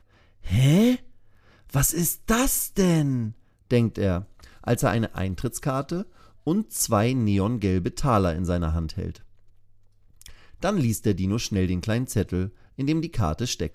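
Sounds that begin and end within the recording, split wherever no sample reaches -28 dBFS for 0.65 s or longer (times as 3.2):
1.74–9.11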